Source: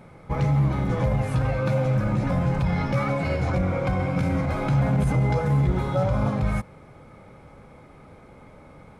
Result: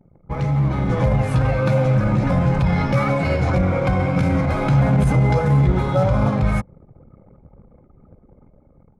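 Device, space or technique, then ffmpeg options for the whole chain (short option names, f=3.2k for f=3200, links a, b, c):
voice memo with heavy noise removal: -af "anlmdn=0.251,dynaudnorm=f=130:g=11:m=5.5dB"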